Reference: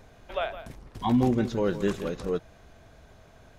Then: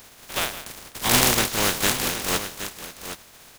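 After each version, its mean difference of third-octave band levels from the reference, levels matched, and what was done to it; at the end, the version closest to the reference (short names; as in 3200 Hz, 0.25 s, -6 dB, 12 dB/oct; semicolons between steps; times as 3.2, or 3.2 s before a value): 13.0 dB: spectral contrast lowered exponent 0.22; on a send: echo 0.769 s -10.5 dB; on the sum: gain +4 dB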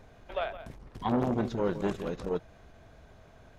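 2.5 dB: high shelf 4400 Hz -6.5 dB; core saturation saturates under 600 Hz; gain -1 dB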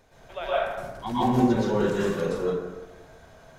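6.0 dB: tone controls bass -6 dB, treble +2 dB; plate-style reverb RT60 1.1 s, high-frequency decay 0.4×, pre-delay 0.105 s, DRR -9.5 dB; gain -5.5 dB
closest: second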